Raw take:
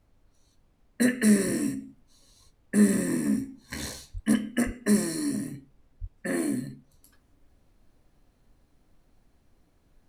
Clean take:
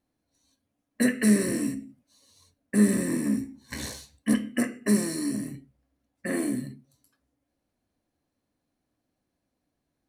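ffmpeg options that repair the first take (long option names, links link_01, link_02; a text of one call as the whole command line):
ffmpeg -i in.wav -filter_complex "[0:a]asplit=3[link_01][link_02][link_03];[link_01]afade=type=out:start_time=4.13:duration=0.02[link_04];[link_02]highpass=frequency=140:width=0.5412,highpass=frequency=140:width=1.3066,afade=type=in:start_time=4.13:duration=0.02,afade=type=out:start_time=4.25:duration=0.02[link_05];[link_03]afade=type=in:start_time=4.25:duration=0.02[link_06];[link_04][link_05][link_06]amix=inputs=3:normalize=0,asplit=3[link_07][link_08][link_09];[link_07]afade=type=out:start_time=4.65:duration=0.02[link_10];[link_08]highpass=frequency=140:width=0.5412,highpass=frequency=140:width=1.3066,afade=type=in:start_time=4.65:duration=0.02,afade=type=out:start_time=4.77:duration=0.02[link_11];[link_09]afade=type=in:start_time=4.77:duration=0.02[link_12];[link_10][link_11][link_12]amix=inputs=3:normalize=0,asplit=3[link_13][link_14][link_15];[link_13]afade=type=out:start_time=6:duration=0.02[link_16];[link_14]highpass=frequency=140:width=0.5412,highpass=frequency=140:width=1.3066,afade=type=in:start_time=6:duration=0.02,afade=type=out:start_time=6.12:duration=0.02[link_17];[link_15]afade=type=in:start_time=6.12:duration=0.02[link_18];[link_16][link_17][link_18]amix=inputs=3:normalize=0,agate=range=-21dB:threshold=-57dB,asetnsamples=nb_out_samples=441:pad=0,asendcmd='7.03 volume volume -8dB',volume=0dB" out.wav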